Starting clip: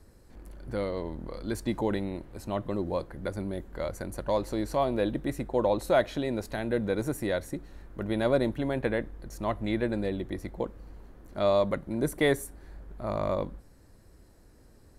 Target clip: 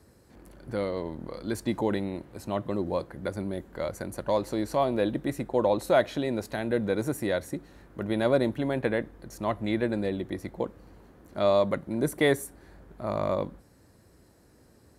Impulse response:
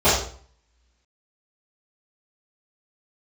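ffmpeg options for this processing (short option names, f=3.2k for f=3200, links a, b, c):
-af "highpass=86,volume=1.5dB"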